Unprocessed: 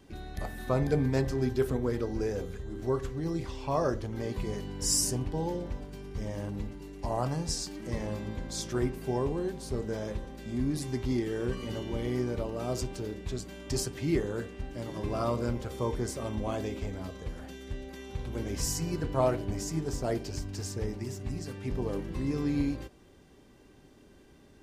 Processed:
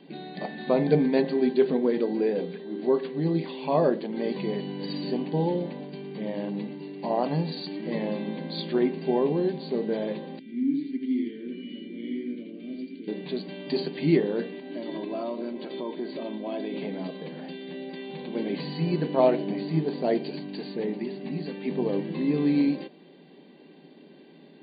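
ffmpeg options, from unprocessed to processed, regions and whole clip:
ffmpeg -i in.wav -filter_complex "[0:a]asettb=1/sr,asplit=3[link_01][link_02][link_03];[link_01]atrim=end=10.394[link_04];[link_02]atrim=start=10.39:end=13.08,asetpts=PTS-STARTPTS,afade=type=in:duration=0.004:curve=qsin,afade=type=out:start_time=2.686:duration=0.004:curve=qsin,asplit=3[link_05][link_06][link_07];[link_05]bandpass=frequency=270:width_type=q:width=8,volume=0dB[link_08];[link_06]bandpass=frequency=2290:width_type=q:width=8,volume=-6dB[link_09];[link_07]bandpass=frequency=3010:width_type=q:width=8,volume=-9dB[link_10];[link_08][link_09][link_10]amix=inputs=3:normalize=0,aecho=1:1:86:0.708,atrim=end_sample=118629[link_11];[link_03]atrim=start=13.076[link_12];[link_04][link_11]acrossfade=duration=0.004:curve1=hsin:curve2=qsin[link_13];[link_13][link_12]acrossfade=duration=0.004:curve1=qsin:curve2=hsin,asettb=1/sr,asplit=3[link_14][link_15][link_16];[link_14]atrim=end=14.524[link_17];[link_15]atrim=start=14.52:end=16.74,asetpts=PTS-STARTPTS,afade=type=in:duration=0.004:curve=qsin,afade=type=out:start_time=2.216:duration=0.004:curve=qsin,acompressor=threshold=-37dB:ratio=3:attack=3.2:release=140:knee=1:detection=peak,aecho=1:1:3.1:0.51,atrim=end_sample=97902[link_18];[link_16]atrim=start=16.736[link_19];[link_17][link_18]acrossfade=duration=0.004:curve1=hsin:curve2=qsin[link_20];[link_20][link_19]acrossfade=duration=0.004:curve1=qsin:curve2=hsin,afftfilt=real='re*between(b*sr/4096,150,4700)':imag='im*between(b*sr/4096,150,4700)':win_size=4096:overlap=0.75,equalizer=frequency=1300:width_type=o:width=0.52:gain=-13,volume=7.5dB" out.wav

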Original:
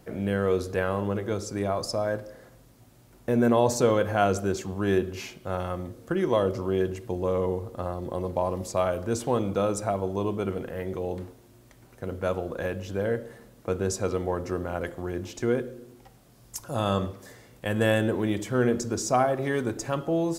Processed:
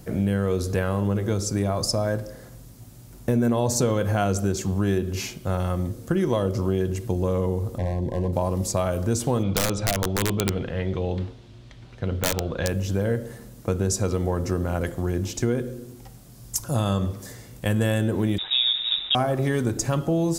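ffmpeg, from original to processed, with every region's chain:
ffmpeg -i in.wav -filter_complex "[0:a]asettb=1/sr,asplit=3[link_01][link_02][link_03];[link_01]atrim=end=7.784[link_04];[link_02]atrim=start=7.78:end=8.33,asetpts=PTS-STARTPTS,afade=type=in:duration=0.004:curve=qsin,afade=type=out:start_time=0.546:duration=0.004:curve=qsin,aemphasis=mode=reproduction:type=75kf,volume=25dB,asoftclip=hard,volume=-25dB,asuperstop=centerf=1300:order=20:qfactor=2.7[link_05];[link_03]atrim=start=8.326[link_06];[link_04][link_05]acrossfade=duration=0.004:curve1=hsin:curve2=qsin[link_07];[link_07][link_06]acrossfade=duration=0.004:curve1=qsin:curve2=hsin,asettb=1/sr,asplit=3[link_08][link_09][link_10];[link_08]atrim=end=9.434[link_11];[link_09]atrim=start=9.43:end=12.68,asetpts=PTS-STARTPTS,afade=type=in:duration=0.004:curve=qsin,afade=type=out:start_time=3.246:duration=0.004:curve=qsin,lowpass=frequency=3500:width_type=q:width=2,equalizer=frequency=270:width_type=o:width=1.4:gain=-2.5,aeval=exprs='(mod(8.41*val(0)+1,2)-1)/8.41':channel_layout=same[link_12];[link_10]atrim=start=12.676[link_13];[link_11][link_12]acrossfade=duration=0.004:curve1=hsin:curve2=qsin[link_14];[link_14][link_13]acrossfade=duration=0.004:curve1=qsin:curve2=hsin,asettb=1/sr,asplit=3[link_15][link_16][link_17];[link_15]atrim=end=18.384[link_18];[link_16]atrim=start=18.38:end=19.15,asetpts=PTS-STARTPTS,afade=type=in:duration=0.004:curve=qsin,afade=type=out:start_time=0.766:duration=0.004:curve=qsin,equalizer=frequency=1600:width=2.9:gain=-10,acrusher=bits=7:dc=4:mix=0:aa=0.000001,lowpass=frequency=3300:width_type=q:width=0.5098,lowpass=frequency=3300:width_type=q:width=0.6013,lowpass=frequency=3300:width_type=q:width=0.9,lowpass=frequency=3300:width_type=q:width=2.563,afreqshift=-3900[link_19];[link_17]atrim=start=19.146[link_20];[link_18][link_19]acrossfade=duration=0.004:curve1=hsin:curve2=qsin[link_21];[link_21][link_20]acrossfade=duration=0.004:curve1=qsin:curve2=hsin,bass=frequency=250:gain=9,treble=frequency=4000:gain=8,acompressor=threshold=-22dB:ratio=4,volume=3dB" out.wav

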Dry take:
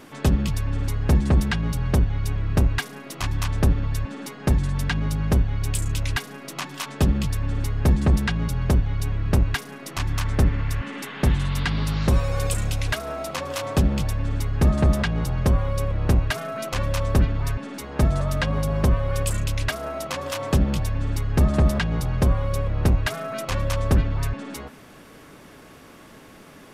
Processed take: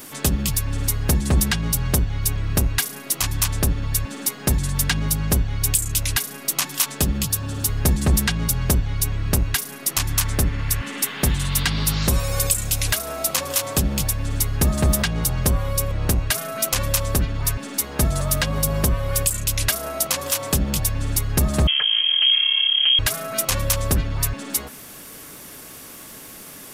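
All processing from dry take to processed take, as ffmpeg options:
ffmpeg -i in.wav -filter_complex "[0:a]asettb=1/sr,asplit=3[link_01][link_02][link_03];[link_01]atrim=end=7.244[link_04];[link_02]atrim=start=7.24:end=7.69,asetpts=PTS-STARTPTS,afade=type=in:duration=0.004:curve=qsin,afade=type=out:start_time=0.446:duration=0.004:curve=qsin,highpass=94,equalizer=frequency=2100:width_type=o:width=0.25:gain=-11.5[link_05];[link_03]atrim=start=7.686[link_06];[link_04][link_05]acrossfade=duration=0.004:curve1=hsin:curve2=qsin[link_07];[link_07][link_06]acrossfade=duration=0.004:curve1=qsin:curve2=hsin,asettb=1/sr,asplit=3[link_08][link_09][link_10];[link_08]atrim=end=21.674[link_11];[link_09]atrim=start=21.67:end=22.99,asetpts=PTS-STARTPTS,afade=type=in:duration=0.004:curve=qsin,afade=type=out:start_time=1.316:duration=0.004:curve=qsin,aeval=exprs='(tanh(12.6*val(0)+0.4)-tanh(0.4))/12.6':channel_layout=same,lowpass=frequency=2800:width_type=q:width=0.5098,lowpass=frequency=2800:width_type=q:width=0.6013,lowpass=frequency=2800:width_type=q:width=0.9,lowpass=frequency=2800:width_type=q:width=2.563,afreqshift=-3300[link_12];[link_10]atrim=start=22.986[link_13];[link_11][link_12]acrossfade=duration=0.004:curve1=hsin:curve2=qsin[link_14];[link_14][link_13]acrossfade=duration=0.004:curve1=qsin:curve2=hsin,aemphasis=mode=production:type=75kf,alimiter=limit=-10.5dB:level=0:latency=1:release=364,highshelf=frequency=5600:gain=5.5,volume=1dB" out.wav

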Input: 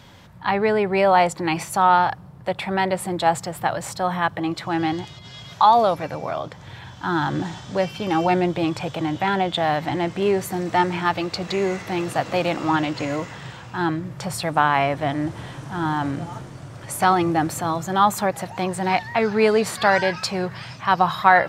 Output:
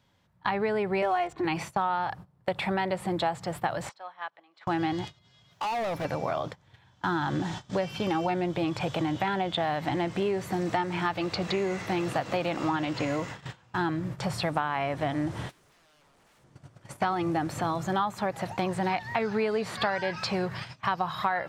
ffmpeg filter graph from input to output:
ffmpeg -i in.wav -filter_complex "[0:a]asettb=1/sr,asplit=3[link_01][link_02][link_03];[link_01]atrim=end=1.024[link_04];[link_02]atrim=start=1.02:end=1.45,asetpts=PTS-STARTPTS,afade=type=in:duration=0.004:curve=qsin,afade=type=out:start_time=0.426:duration=0.004:curve=qsin,equalizer=frequency=4900:width_type=o:width=0.23:gain=-13,aecho=1:1:2.8:0.9,atrim=end_sample=18963,adynamicsmooth=sensitivity=7:basefreq=3200[link_05];[link_03]atrim=start=1.446[link_06];[link_04][link_05]acrossfade=duration=0.004:curve1=hsin:curve2=qsin[link_07];[link_07][link_06]acrossfade=duration=0.004:curve1=qsin:curve2=hsin,asettb=1/sr,asplit=3[link_08][link_09][link_10];[link_08]atrim=end=3.894[link_11];[link_09]atrim=start=3.89:end=4.67,asetpts=PTS-STARTPTS,afade=type=in:duration=0.004:curve=qsin,afade=type=out:start_time=0.776:duration=0.004:curve=qsin,acompressor=threshold=-28dB:ratio=10:attack=3.2:release=140:knee=1:detection=peak,highpass=700,lowpass=4800[link_12];[link_10]atrim=start=4.666[link_13];[link_11][link_12]acrossfade=duration=0.004:curve1=hsin:curve2=qsin[link_14];[link_14][link_13]acrossfade=duration=0.004:curve1=qsin:curve2=hsin,asettb=1/sr,asplit=3[link_15][link_16][link_17];[link_15]atrim=end=5.514[link_18];[link_16]atrim=start=5.51:end=6.05,asetpts=PTS-STARTPTS,afade=type=in:duration=0.004:curve=qsin,afade=type=out:start_time=0.536:duration=0.004:curve=qsin,acrusher=bits=8:mix=0:aa=0.5,acompressor=threshold=-23dB:ratio=3:attack=3.2:release=140:knee=1:detection=peak,asoftclip=type=hard:threshold=-27.5dB[link_19];[link_17]atrim=start=6.046[link_20];[link_18][link_19]acrossfade=duration=0.004:curve1=hsin:curve2=qsin[link_21];[link_21][link_20]acrossfade=duration=0.004:curve1=qsin:curve2=hsin,asettb=1/sr,asplit=3[link_22][link_23][link_24];[link_22]atrim=end=15.494[link_25];[link_23]atrim=start=15.49:end=16.44,asetpts=PTS-STARTPTS,afade=type=in:duration=0.004:curve=qsin,afade=type=out:start_time=0.946:duration=0.004:curve=qsin,highshelf=frequency=5000:gain=9,acompressor=threshold=-26dB:ratio=12:attack=3.2:release=140:knee=1:detection=peak,aeval=exprs='0.0141*(abs(mod(val(0)/0.0141+3,4)-2)-1)':channel_layout=same[link_26];[link_24]atrim=start=16.436[link_27];[link_25][link_26]acrossfade=duration=0.004:curve1=hsin:curve2=qsin[link_28];[link_28][link_27]acrossfade=duration=0.004:curve1=qsin:curve2=hsin,acrossover=split=4700[link_29][link_30];[link_30]acompressor=threshold=-44dB:ratio=4:attack=1:release=60[link_31];[link_29][link_31]amix=inputs=2:normalize=0,agate=range=-21dB:threshold=-34dB:ratio=16:detection=peak,acompressor=threshold=-25dB:ratio=6" out.wav

